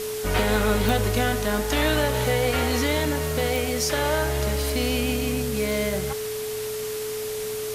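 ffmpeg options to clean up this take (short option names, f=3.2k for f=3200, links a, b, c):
-af "adeclick=t=4,bandreject=f=116.7:t=h:w=4,bandreject=f=233.4:t=h:w=4,bandreject=f=350.1:t=h:w=4,bandreject=f=466.8:t=h:w=4,bandreject=f=583.5:t=h:w=4,bandreject=f=430:w=30,afwtdn=0.018"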